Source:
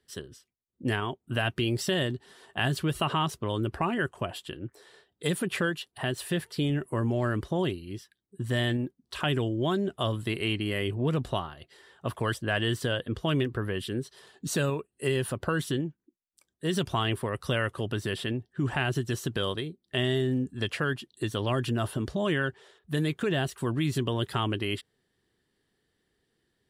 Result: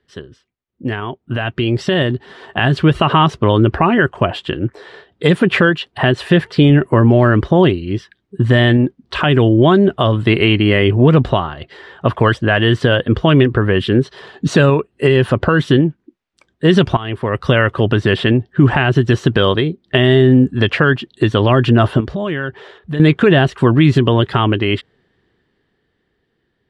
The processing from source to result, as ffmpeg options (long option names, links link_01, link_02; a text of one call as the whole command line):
ffmpeg -i in.wav -filter_complex "[0:a]asettb=1/sr,asplit=3[link_01][link_02][link_03];[link_01]atrim=end=22.004[link_04];[link_02]atrim=start=22:end=23,asetpts=PTS-STARTPTS,afade=type=in:duration=0.004:curve=qsin,afade=type=out:start_time=0.996:duration=0.004:curve=qsin,acompressor=threshold=-42dB:ratio=2.5:attack=3.2:release=140:knee=1:detection=peak[link_05];[link_03]atrim=start=22.996[link_06];[link_04][link_05]acrossfade=duration=0.004:curve1=hsin:curve2=qsin[link_07];[link_07][link_06]acrossfade=duration=0.004:curve1=qsin:curve2=hsin,asplit=2[link_08][link_09];[link_08]atrim=end=16.97,asetpts=PTS-STARTPTS,afade=type=out:start_time=16.966:duration=0.004:curve=hsin:silence=0.133352[link_10];[link_09]atrim=start=16.97,asetpts=PTS-STARTPTS,afade=type=in:duration=0.72:silence=0.133352[link_11];[link_10][link_11]concat=n=2:v=0:a=1,lowpass=2900,alimiter=limit=-20dB:level=0:latency=1:release=318,dynaudnorm=framelen=120:gausssize=31:maxgain=10.5dB,volume=8.5dB" out.wav